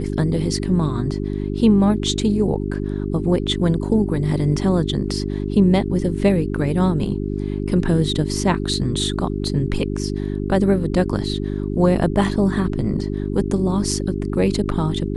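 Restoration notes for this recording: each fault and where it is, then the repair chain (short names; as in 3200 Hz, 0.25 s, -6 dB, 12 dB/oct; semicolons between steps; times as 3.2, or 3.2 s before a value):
hum 50 Hz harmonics 8 -24 dBFS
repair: de-hum 50 Hz, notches 8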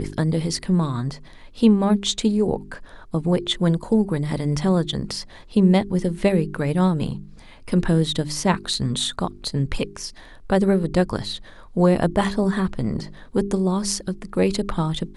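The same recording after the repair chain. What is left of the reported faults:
none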